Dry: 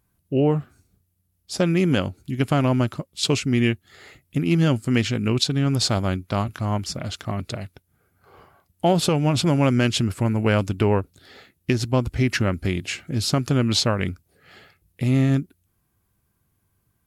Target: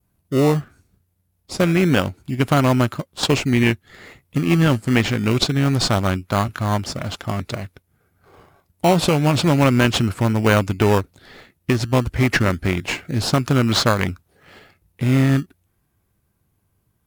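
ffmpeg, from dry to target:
-filter_complex "[0:a]adynamicequalizer=threshold=0.01:dfrequency=1600:dqfactor=0.72:tfrequency=1600:tqfactor=0.72:attack=5:release=100:ratio=0.375:range=4:mode=boostabove:tftype=bell,asplit=2[a][b];[b]acrusher=samples=23:mix=1:aa=0.000001:lfo=1:lforange=13.8:lforate=0.27,volume=-5.5dB[c];[a][c]amix=inputs=2:normalize=0,volume=-1dB"

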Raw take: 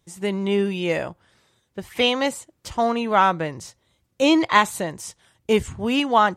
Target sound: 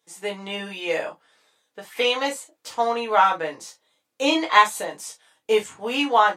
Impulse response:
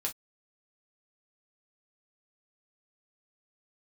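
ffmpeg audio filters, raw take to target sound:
-filter_complex "[0:a]highpass=430[a];[1:a]atrim=start_sample=2205[b];[a][b]afir=irnorm=-1:irlink=0,volume=-2dB"

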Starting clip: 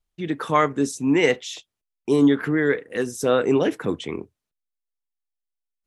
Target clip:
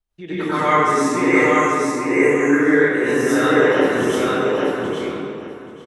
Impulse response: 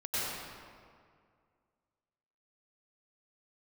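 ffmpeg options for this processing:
-filter_complex "[0:a]acrossover=split=290|1100|2000[a][b][c][d];[a]acompressor=threshold=-37dB:ratio=6[e];[b]alimiter=limit=-21dB:level=0:latency=1[f];[d]flanger=delay=20:depth=3.5:speed=0.92[g];[e][f][c][g]amix=inputs=4:normalize=0,asettb=1/sr,asplit=3[h][i][j];[h]atrim=end=1.094[k];[i]atrim=start=1.09:end=2.51,asetpts=PTS-STARTPTS,afade=t=in:d=0.004:c=qsin,afade=t=out:st=1.416:d=0.004:c=qsin,asuperstop=centerf=4100:order=20:qfactor=1.2[l];[j]atrim=start=2.506[m];[k][l]acrossfade=d=0.004:c1=hsin:c2=qsin[n];[n][m]acrossfade=d=0.004:c1=qsin:c2=hsin,aecho=1:1:833|1666|2499:0.708|0.113|0.0181[o];[1:a]atrim=start_sample=2205[p];[o][p]afir=irnorm=-1:irlink=0,volume=2.5dB"

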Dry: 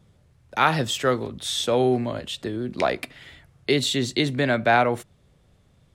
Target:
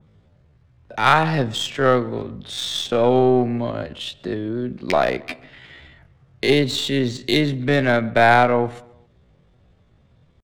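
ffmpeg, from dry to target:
-filter_complex "[0:a]aeval=exprs='0.562*(cos(1*acos(clip(val(0)/0.562,-1,1)))-cos(1*PI/2))+0.0398*(cos(4*acos(clip(val(0)/0.562,-1,1)))-cos(4*PI/2))+0.00631*(cos(7*acos(clip(val(0)/0.562,-1,1)))-cos(7*PI/2))':c=same,adynamicsmooth=sensitivity=2.5:basefreq=4.6k,atempo=0.57,asplit=2[a][b];[b]adelay=135,lowpass=f=3.1k:p=1,volume=-23dB,asplit=2[c][d];[d]adelay=135,lowpass=f=3.1k:p=1,volume=0.48,asplit=2[e][f];[f]adelay=135,lowpass=f=3.1k:p=1,volume=0.48[g];[c][e][g]amix=inputs=3:normalize=0[h];[a][h]amix=inputs=2:normalize=0,adynamicequalizer=threshold=0.0141:dfrequency=2700:dqfactor=0.7:tfrequency=2700:tqfactor=0.7:attack=5:release=100:ratio=0.375:range=2:mode=cutabove:tftype=highshelf,volume=4dB"

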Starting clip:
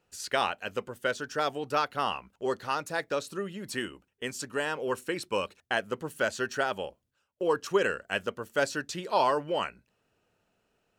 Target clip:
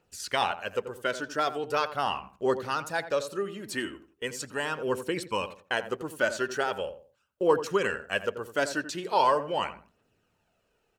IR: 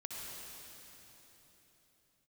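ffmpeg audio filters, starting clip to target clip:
-filter_complex "[0:a]aphaser=in_gain=1:out_gain=1:delay=3.4:decay=0.39:speed=0.4:type=triangular,asplit=2[a][b];[b]adelay=85,lowpass=f=1.3k:p=1,volume=-10.5dB,asplit=2[c][d];[d]adelay=85,lowpass=f=1.3k:p=1,volume=0.29,asplit=2[e][f];[f]adelay=85,lowpass=f=1.3k:p=1,volume=0.29[g];[a][c][e][g]amix=inputs=4:normalize=0"

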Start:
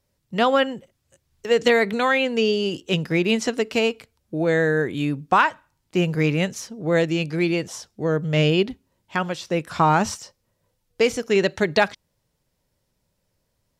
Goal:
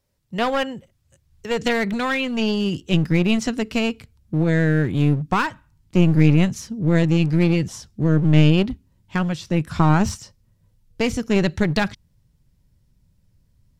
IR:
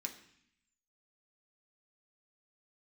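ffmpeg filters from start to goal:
-af "asubboost=boost=8:cutoff=190,aeval=exprs='clip(val(0),-1,0.0891)':c=same,volume=-1dB"

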